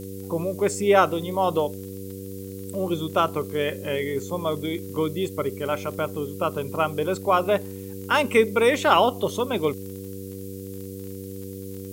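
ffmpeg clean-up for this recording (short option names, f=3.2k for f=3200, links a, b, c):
-af "adeclick=t=4,bandreject=f=96.8:t=h:w=4,bandreject=f=193.6:t=h:w=4,bandreject=f=290.4:t=h:w=4,bandreject=f=387.2:t=h:w=4,bandreject=f=484:t=h:w=4,afftdn=nr=30:nf=-36"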